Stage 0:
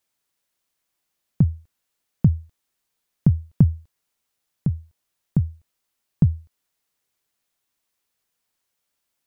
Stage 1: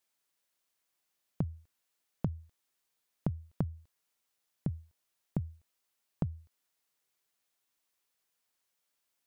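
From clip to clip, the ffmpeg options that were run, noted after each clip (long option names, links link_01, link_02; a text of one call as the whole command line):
ffmpeg -i in.wav -af "lowshelf=frequency=210:gain=-7.5,acompressor=threshold=-25dB:ratio=12,volume=-3.5dB" out.wav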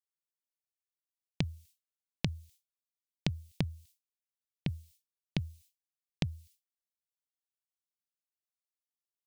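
ffmpeg -i in.wav -af "afftdn=noise_reduction=15:noise_floor=-55,agate=range=-33dB:threshold=-57dB:ratio=3:detection=peak,aexciter=amount=9.3:drive=9.5:freq=2100" out.wav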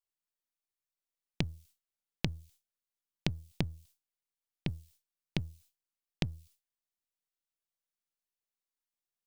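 ffmpeg -i in.wav -af "aeval=exprs='if(lt(val(0),0),0.447*val(0),val(0))':channel_layout=same,volume=1dB" out.wav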